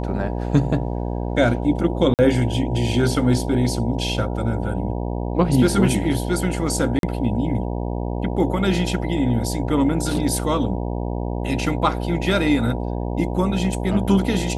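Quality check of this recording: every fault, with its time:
buzz 60 Hz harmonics 16 -25 dBFS
2.14–2.19 s: dropout 48 ms
6.99–7.03 s: dropout 42 ms

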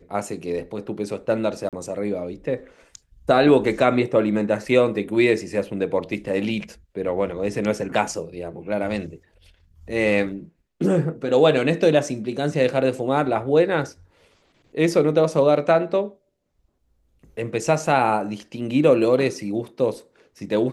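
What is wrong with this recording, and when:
1.69–1.73 s: dropout 37 ms

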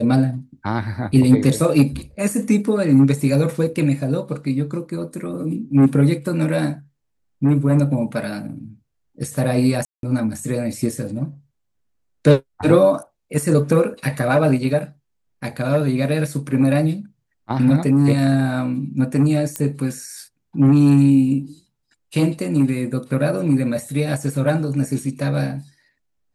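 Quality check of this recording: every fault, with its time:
9.85–10.03 s: dropout 182 ms
19.56 s: pop -8 dBFS

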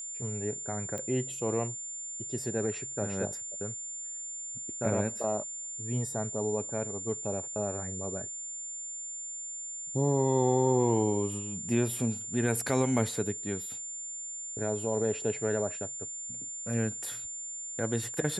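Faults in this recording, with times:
whine 7.2 kHz -37 dBFS
0.98 s: pop -23 dBFS

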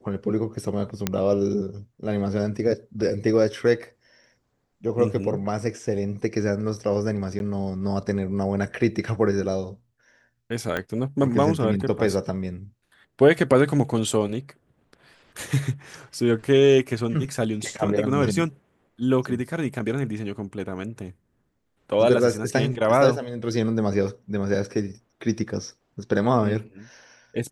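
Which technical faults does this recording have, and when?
1.07 s: pop -7 dBFS
7.39–7.40 s: dropout
10.77 s: pop -13 dBFS

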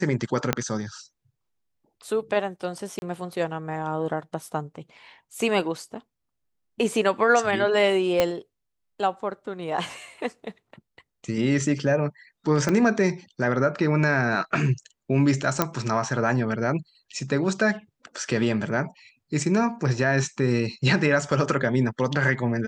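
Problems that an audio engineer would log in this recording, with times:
0.53 s: pop -6 dBFS
2.99–3.02 s: dropout 31 ms
8.20 s: pop -6 dBFS
12.69 s: pop -11 dBFS
15.62 s: pop -5 dBFS

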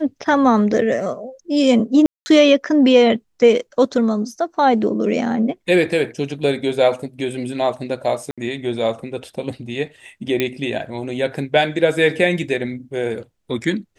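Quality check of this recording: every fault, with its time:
2.06–2.26 s: dropout 200 ms
8.31–8.38 s: dropout 66 ms
10.40 s: pop -6 dBFS

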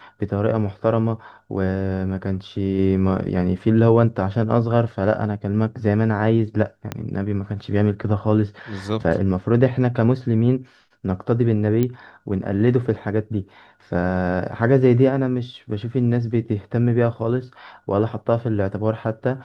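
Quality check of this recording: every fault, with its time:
6.92 s: pop -11 dBFS
11.83 s: pop -10 dBFS

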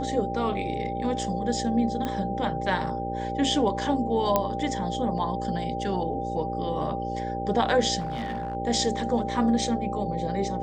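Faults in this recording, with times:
buzz 60 Hz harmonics 10 -33 dBFS
whine 790 Hz -31 dBFS
2.05 s: pop -16 dBFS
4.36 s: pop -8 dBFS
7.99–8.55 s: clipped -26.5 dBFS

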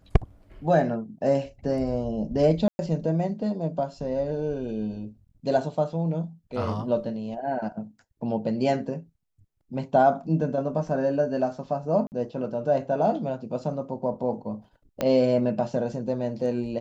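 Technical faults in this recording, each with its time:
2.68–2.79 s: dropout 110 ms
12.07–12.12 s: dropout 49 ms
15.01 s: pop -12 dBFS

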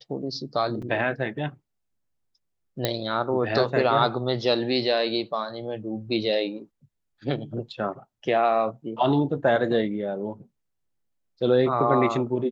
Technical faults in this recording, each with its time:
0.82 s: dropout 4.9 ms
2.85 s: pop -8 dBFS

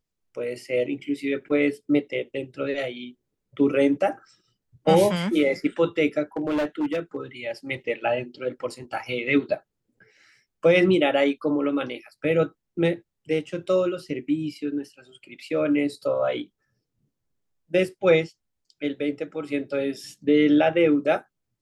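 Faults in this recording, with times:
6.37–7.16 s: clipped -21 dBFS

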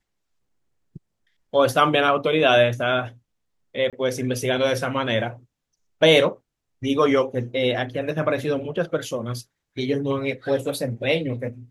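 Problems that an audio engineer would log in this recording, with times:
3.90–3.93 s: dropout 27 ms

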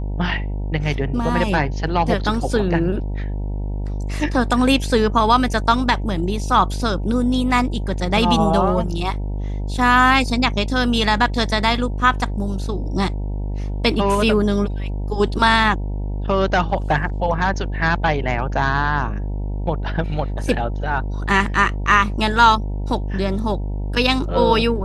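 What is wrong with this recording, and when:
buzz 50 Hz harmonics 19 -24 dBFS

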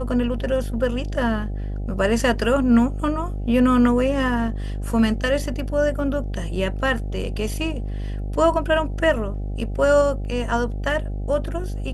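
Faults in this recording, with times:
buzz 50 Hz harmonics 16 -27 dBFS

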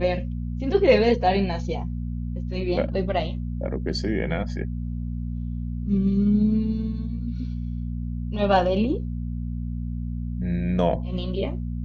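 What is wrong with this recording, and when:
hum 60 Hz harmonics 4 -29 dBFS

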